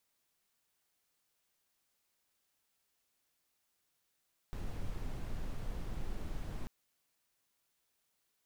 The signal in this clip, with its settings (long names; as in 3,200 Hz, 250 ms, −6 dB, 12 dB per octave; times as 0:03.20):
noise brown, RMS −38 dBFS 2.14 s